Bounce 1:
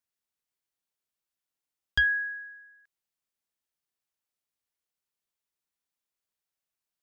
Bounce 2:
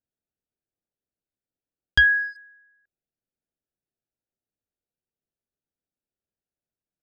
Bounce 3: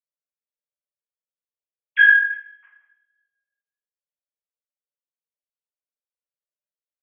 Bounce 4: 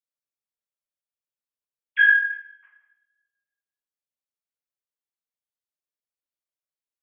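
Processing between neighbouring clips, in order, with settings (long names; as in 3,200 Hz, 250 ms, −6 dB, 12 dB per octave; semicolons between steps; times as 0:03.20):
adaptive Wiener filter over 41 samples; level +7.5 dB
three sine waves on the formant tracks; coupled-rooms reverb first 0.54 s, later 1.5 s, from −28 dB, DRR −8.5 dB
tape delay 99 ms, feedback 48%, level −21 dB, low-pass 2,400 Hz; level −3.5 dB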